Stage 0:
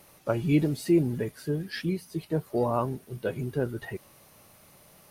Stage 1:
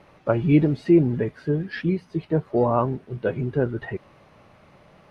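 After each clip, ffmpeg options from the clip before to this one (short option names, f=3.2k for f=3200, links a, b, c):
-af "lowpass=2.4k,volume=6dB"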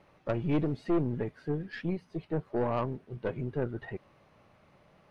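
-af "aeval=exprs='(tanh(6.31*val(0)+0.55)-tanh(0.55))/6.31':c=same,volume=-6.5dB"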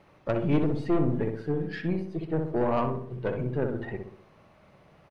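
-filter_complex "[0:a]asplit=2[a][b];[b]adelay=63,lowpass=f=1.5k:p=1,volume=-4dB,asplit=2[c][d];[d]adelay=63,lowpass=f=1.5k:p=1,volume=0.52,asplit=2[e][f];[f]adelay=63,lowpass=f=1.5k:p=1,volume=0.52,asplit=2[g][h];[h]adelay=63,lowpass=f=1.5k:p=1,volume=0.52,asplit=2[i][j];[j]adelay=63,lowpass=f=1.5k:p=1,volume=0.52,asplit=2[k][l];[l]adelay=63,lowpass=f=1.5k:p=1,volume=0.52,asplit=2[m][n];[n]adelay=63,lowpass=f=1.5k:p=1,volume=0.52[o];[a][c][e][g][i][k][m][o]amix=inputs=8:normalize=0,volume=3dB"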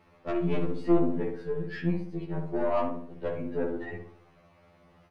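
-af "afftfilt=real='re*2*eq(mod(b,4),0)':imag='im*2*eq(mod(b,4),0)':win_size=2048:overlap=0.75"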